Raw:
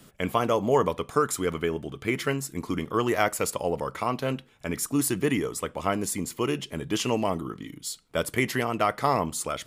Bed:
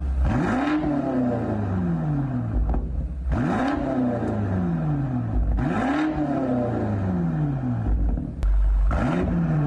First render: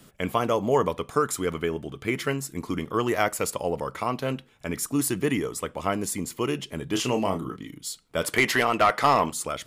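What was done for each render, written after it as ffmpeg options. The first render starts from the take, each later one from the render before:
-filter_complex "[0:a]asettb=1/sr,asplit=3[a][b][c];[a]atrim=end=6.904[d];[b]atrim=start=6.9:end=7.56,asetpts=PTS-STARTPTS,afade=t=in:d=0.004:c=qsin,afade=t=out:st=0.656:d=0.004:c=qsin,asplit=2[e][f];[f]adelay=31,volume=-7dB[g];[e][g]amix=inputs=2:normalize=0,atrim=end_sample=29106[h];[c]atrim=start=7.556[i];[d][h]acrossfade=d=0.004:c1=hsin:c2=qsin[j];[j][i]acrossfade=d=0.004:c1=qsin:c2=hsin,asettb=1/sr,asplit=3[k][l][m];[k]atrim=end=8.224[n];[l]atrim=start=8.22:end=9.32,asetpts=PTS-STARTPTS,afade=t=in:d=0.004:c=qsin,afade=t=out:st=1.096:d=0.004:c=qsin,asplit=2[o][p];[p]highpass=f=720:p=1,volume=15dB,asoftclip=type=tanh:threshold=-8.5dB[q];[o][q]amix=inputs=2:normalize=0,lowpass=f=5.3k:p=1,volume=-6dB[r];[m]atrim=start=9.316[s];[n][r]acrossfade=d=0.004:c1=hsin:c2=qsin[t];[t][s]acrossfade=d=0.004:c1=qsin:c2=hsin"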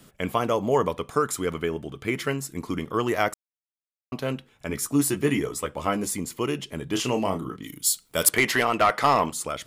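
-filter_complex "[0:a]asettb=1/sr,asplit=3[a][b][c];[a]atrim=end=4.694[d];[b]atrim=start=4.69:end=6.17,asetpts=PTS-STARTPTS,afade=t=in:d=0.004:c=qsin,afade=t=out:st=1.476:d=0.004:c=qsin,asplit=2[e][f];[f]adelay=14,volume=-5.5dB[g];[e][g]amix=inputs=2:normalize=0,atrim=end_sample=65268[h];[c]atrim=start=6.166[i];[d][h]acrossfade=d=0.004:c1=hsin:c2=qsin[j];[j][i]acrossfade=d=0.004:c1=qsin:c2=hsin,asettb=1/sr,asplit=3[k][l][m];[k]atrim=end=7.634[n];[l]atrim=start=7.63:end=8.29,asetpts=PTS-STARTPTS,afade=t=in:d=0.004:c=qsin,afade=t=out:st=0.656:d=0.004:c=qsin,aemphasis=mode=production:type=75kf[o];[m]atrim=start=8.286[p];[n][o]acrossfade=d=0.004:c1=hsin:c2=qsin[q];[q][p]acrossfade=d=0.004:c1=qsin:c2=hsin,asplit=3[r][s][t];[r]atrim=end=3.34,asetpts=PTS-STARTPTS,afade=t=out:st=3.336:d=0.004:c=hsin[u];[s]atrim=start=3.34:end=4.12,asetpts=PTS-STARTPTS,volume=0[v];[t]atrim=start=4.12,asetpts=PTS-STARTPTS,afade=t=in:d=0.004:c=hsin[w];[u][v][w]concat=n=3:v=0:a=1"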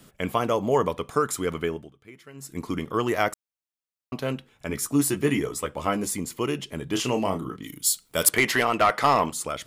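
-filter_complex "[0:a]asplit=3[a][b][c];[a]atrim=end=1.93,asetpts=PTS-STARTPTS,afade=t=out:st=1.68:d=0.25:silence=0.1[d];[b]atrim=start=1.93:end=2.33,asetpts=PTS-STARTPTS,volume=-20dB[e];[c]atrim=start=2.33,asetpts=PTS-STARTPTS,afade=t=in:d=0.25:silence=0.1[f];[d][e][f]concat=n=3:v=0:a=1"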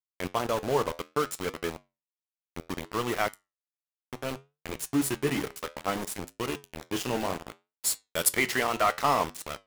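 -af "aeval=exprs='val(0)*gte(abs(val(0)),0.0562)':c=same,flanger=delay=9.1:depth=4.4:regen=-75:speed=0.63:shape=triangular"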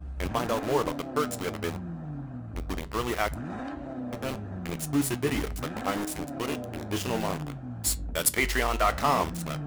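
-filter_complex "[1:a]volume=-13dB[a];[0:a][a]amix=inputs=2:normalize=0"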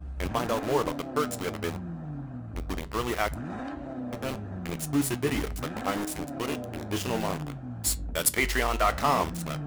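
-af anull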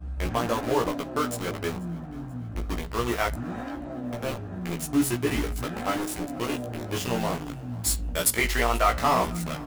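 -filter_complex "[0:a]asplit=2[a][b];[b]adelay=17,volume=-3dB[c];[a][c]amix=inputs=2:normalize=0,aecho=1:1:486|972|1458|1944:0.0708|0.0396|0.0222|0.0124"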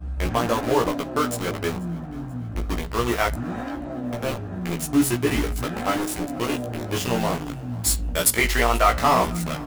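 -af "volume=4dB"

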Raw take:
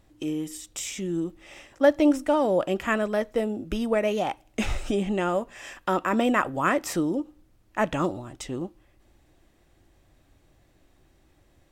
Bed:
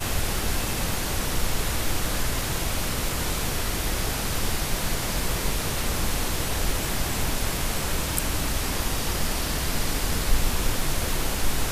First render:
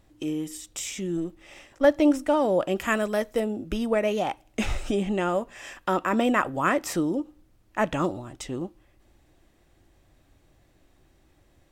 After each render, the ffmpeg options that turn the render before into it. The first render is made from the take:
-filter_complex "[0:a]asettb=1/sr,asplit=3[a][b][c];[a]atrim=end=1.174[d];[b]atrim=start=1.17:end=1.85,asetpts=PTS-STARTPTS,afade=t=in:d=0.004:c=qsin,afade=t=out:st=0.676:d=0.004:c=qsin,aeval=exprs='if(lt(val(0),0),0.708*val(0),val(0))':c=same[e];[c]atrim=start=1.846[f];[d][e]acrossfade=d=0.004:c1=hsin:c2=qsin[g];[g][f]acrossfade=d=0.004:c1=qsin:c2=hsin,asettb=1/sr,asplit=3[h][i][j];[h]atrim=end=2.774[k];[i]atrim=start=2.77:end=3.4,asetpts=PTS-STARTPTS,afade=t=in:d=0.004:c=qsin,afade=t=out:st=0.626:d=0.004:c=qsin,aemphasis=mode=production:type=cd[l];[j]atrim=start=3.396[m];[k][l]acrossfade=d=0.004:c1=hsin:c2=qsin[n];[n][m]acrossfade=d=0.004:c1=qsin:c2=hsin"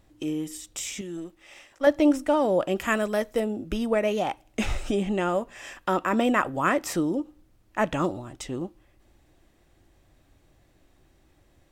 -filter_complex "[0:a]asettb=1/sr,asplit=3[a][b][c];[a]atrim=end=1.014[d];[b]atrim=start=1.01:end=1.87,asetpts=PTS-STARTPTS,afade=t=in:d=0.004:c=qsin,afade=t=out:st=0.856:d=0.004:c=qsin,lowshelf=f=440:g=-10.5[e];[c]atrim=start=1.866[f];[d][e]acrossfade=d=0.004:c1=hsin:c2=qsin[g];[g][f]acrossfade=d=0.004:c1=qsin:c2=hsin"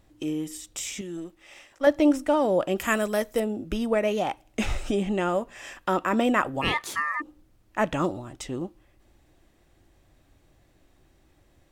-filter_complex "[0:a]asettb=1/sr,asplit=3[a][b][c];[a]atrim=end=2.784[d];[b]atrim=start=2.78:end=3.4,asetpts=PTS-STARTPTS,afade=t=in:d=0.004:c=qsin,afade=t=out:st=0.616:d=0.004:c=qsin,highshelf=f=7k:g=8[e];[c]atrim=start=3.396[f];[d][e]acrossfade=d=0.004:c1=hsin:c2=qsin[g];[g][f]acrossfade=d=0.004:c1=qsin:c2=hsin,asplit=3[h][i][j];[h]afade=t=out:st=6.61:d=0.02[k];[i]aeval=exprs='val(0)*sin(2*PI*1500*n/s)':c=same,afade=t=in:st=6.61:d=0.02,afade=t=out:st=7.2:d=0.02[l];[j]afade=t=in:st=7.2:d=0.02[m];[k][l][m]amix=inputs=3:normalize=0"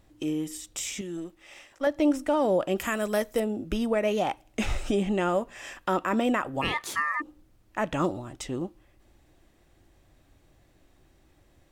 -af "alimiter=limit=-15.5dB:level=0:latency=1:release=217"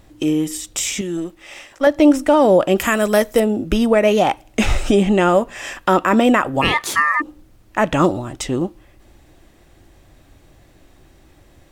-af "volume=11.5dB"

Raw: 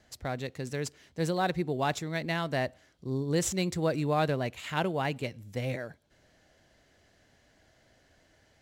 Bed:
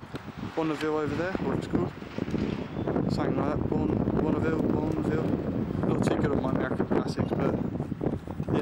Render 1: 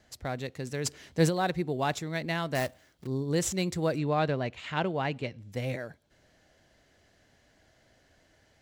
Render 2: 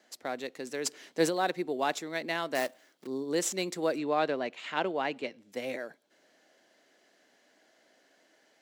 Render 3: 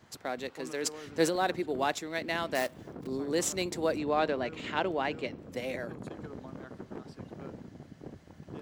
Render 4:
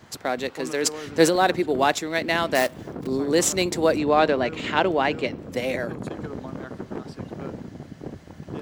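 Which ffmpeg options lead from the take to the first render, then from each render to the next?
-filter_complex "[0:a]asplit=3[a][b][c];[a]afade=t=out:st=0.84:d=0.02[d];[b]acontrast=86,afade=t=in:st=0.84:d=0.02,afade=t=out:st=1.28:d=0.02[e];[c]afade=t=in:st=1.28:d=0.02[f];[d][e][f]amix=inputs=3:normalize=0,asettb=1/sr,asplit=3[g][h][i];[g]atrim=end=2.554[j];[h]atrim=start=2.55:end=3.07,asetpts=PTS-STARTPTS,afade=t=in:d=0.004:c=qsin,afade=t=out:st=0.516:d=0.004:c=qsin,acrusher=bits=2:mode=log:mix=0:aa=0.000001[k];[i]atrim=start=3.066[l];[j][k]acrossfade=d=0.004:c1=hsin:c2=qsin[m];[m][l]acrossfade=d=0.004:c1=qsin:c2=hsin,asettb=1/sr,asplit=3[n][o][p];[n]atrim=end=3.984[q];[o]atrim=start=3.98:end=5.52,asetpts=PTS-STARTPTS,afade=t=in:d=0.004:c=qsin,afade=t=out:st=1.536:d=0.004:c=qsin,lowpass=4.9k[r];[p]atrim=start=5.516[s];[q][r]acrossfade=d=0.004:c1=hsin:c2=qsin[t];[t][s]acrossfade=d=0.004:c1=qsin:c2=hsin"
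-af "highpass=f=250:w=0.5412,highpass=f=250:w=1.3066"
-filter_complex "[1:a]volume=-17dB[a];[0:a][a]amix=inputs=2:normalize=0"
-af "volume=9.5dB"

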